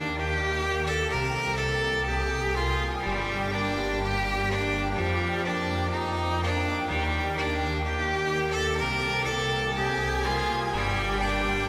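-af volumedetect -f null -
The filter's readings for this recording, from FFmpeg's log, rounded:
mean_volume: -26.9 dB
max_volume: -15.2 dB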